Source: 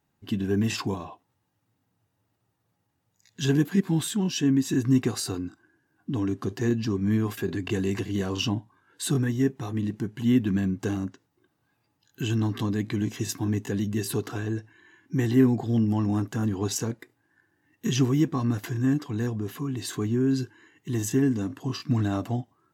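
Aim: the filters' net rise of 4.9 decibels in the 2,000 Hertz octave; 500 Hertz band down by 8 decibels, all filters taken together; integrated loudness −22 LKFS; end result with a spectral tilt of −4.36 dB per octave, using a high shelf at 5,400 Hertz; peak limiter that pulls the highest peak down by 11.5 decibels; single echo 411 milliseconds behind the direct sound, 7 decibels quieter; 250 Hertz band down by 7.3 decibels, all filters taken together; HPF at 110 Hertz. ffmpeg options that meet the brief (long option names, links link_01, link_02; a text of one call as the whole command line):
ffmpeg -i in.wav -af "highpass=110,equalizer=frequency=250:width_type=o:gain=-6.5,equalizer=frequency=500:width_type=o:gain=-8.5,equalizer=frequency=2000:width_type=o:gain=6,highshelf=frequency=5400:gain=7,alimiter=limit=-22dB:level=0:latency=1,aecho=1:1:411:0.447,volume=10.5dB" out.wav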